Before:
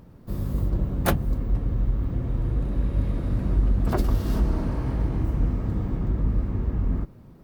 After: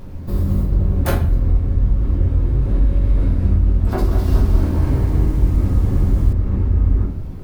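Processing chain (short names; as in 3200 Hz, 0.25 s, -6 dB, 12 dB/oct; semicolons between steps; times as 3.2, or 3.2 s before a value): bell 84 Hz +12.5 dB 0.25 oct; compressor 6:1, threshold -27 dBFS, peak gain reduction 13 dB; added noise brown -53 dBFS; shoebox room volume 74 m³, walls mixed, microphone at 0.98 m; 3.91–6.33 lo-fi delay 0.203 s, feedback 55%, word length 8-bit, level -6.5 dB; gain +6.5 dB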